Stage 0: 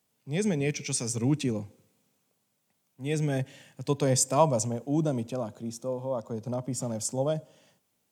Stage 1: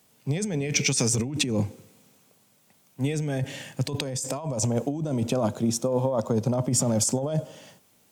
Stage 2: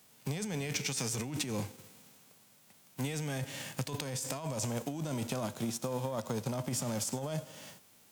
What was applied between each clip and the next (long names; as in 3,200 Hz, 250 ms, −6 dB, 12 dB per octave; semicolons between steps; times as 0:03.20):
compressor whose output falls as the input rises −34 dBFS, ratio −1; level +8 dB
spectral envelope flattened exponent 0.6; downward compressor 3 to 1, threshold −36 dBFS, peak gain reduction 13 dB